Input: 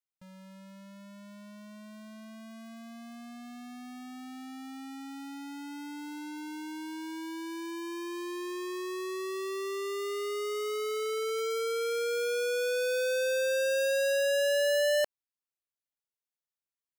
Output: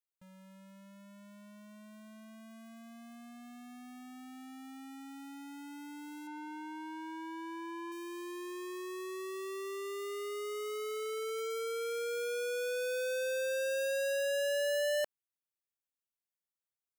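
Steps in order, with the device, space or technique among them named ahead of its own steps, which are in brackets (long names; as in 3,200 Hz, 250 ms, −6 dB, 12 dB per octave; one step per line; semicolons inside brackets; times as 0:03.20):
0:06.27–0:07.92: drawn EQ curve 450 Hz 0 dB, 820 Hz +8 dB, 14,000 Hz −13 dB
exciter from parts (in parallel at −5.5 dB: high-pass filter 4,300 Hz 24 dB per octave + soft clipping −39.5 dBFS, distortion −10 dB)
on the sum: level −5.5 dB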